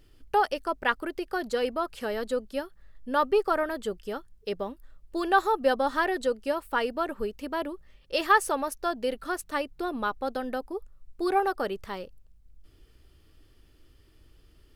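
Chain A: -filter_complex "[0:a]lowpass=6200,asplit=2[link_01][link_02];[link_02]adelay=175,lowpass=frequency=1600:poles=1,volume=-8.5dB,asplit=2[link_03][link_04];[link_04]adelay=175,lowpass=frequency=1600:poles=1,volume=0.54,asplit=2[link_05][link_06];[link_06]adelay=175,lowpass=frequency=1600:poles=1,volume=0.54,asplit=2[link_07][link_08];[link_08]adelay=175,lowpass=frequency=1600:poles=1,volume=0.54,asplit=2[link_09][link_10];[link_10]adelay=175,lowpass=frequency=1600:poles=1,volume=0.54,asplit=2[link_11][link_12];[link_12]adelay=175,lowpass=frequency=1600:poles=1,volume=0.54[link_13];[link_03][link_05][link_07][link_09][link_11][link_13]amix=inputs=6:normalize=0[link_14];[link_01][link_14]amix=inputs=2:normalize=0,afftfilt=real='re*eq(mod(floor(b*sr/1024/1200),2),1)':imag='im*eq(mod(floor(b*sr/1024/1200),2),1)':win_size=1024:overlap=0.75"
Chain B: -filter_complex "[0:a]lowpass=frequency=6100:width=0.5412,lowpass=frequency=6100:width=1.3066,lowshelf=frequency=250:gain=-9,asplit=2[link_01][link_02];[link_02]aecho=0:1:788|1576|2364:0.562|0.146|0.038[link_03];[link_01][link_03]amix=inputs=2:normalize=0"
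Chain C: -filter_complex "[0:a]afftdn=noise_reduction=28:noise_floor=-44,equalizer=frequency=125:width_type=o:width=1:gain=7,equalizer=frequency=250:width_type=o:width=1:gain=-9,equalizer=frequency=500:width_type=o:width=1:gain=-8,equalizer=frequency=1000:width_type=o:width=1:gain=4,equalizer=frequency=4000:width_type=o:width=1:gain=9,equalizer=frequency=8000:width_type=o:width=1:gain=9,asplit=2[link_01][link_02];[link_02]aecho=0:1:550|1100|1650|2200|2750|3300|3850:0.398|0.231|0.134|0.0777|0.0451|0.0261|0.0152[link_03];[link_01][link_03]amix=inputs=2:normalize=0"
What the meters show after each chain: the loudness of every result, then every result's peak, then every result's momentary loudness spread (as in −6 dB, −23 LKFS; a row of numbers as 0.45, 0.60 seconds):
−34.0, −29.5, −28.0 LKFS; −11.0, −8.5, −6.5 dBFS; 16, 11, 15 LU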